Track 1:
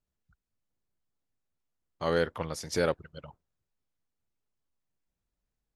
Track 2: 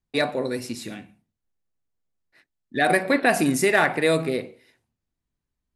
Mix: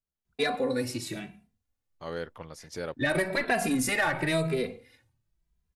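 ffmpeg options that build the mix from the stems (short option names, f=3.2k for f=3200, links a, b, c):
-filter_complex "[0:a]volume=-8.5dB[a];[1:a]asoftclip=type=tanh:threshold=-11.5dB,asubboost=boost=3.5:cutoff=130,asplit=2[b][c];[c]adelay=2.6,afreqshift=0.95[d];[b][d]amix=inputs=2:normalize=1,adelay=250,volume=2.5dB[e];[a][e]amix=inputs=2:normalize=0,acompressor=threshold=-23dB:ratio=5"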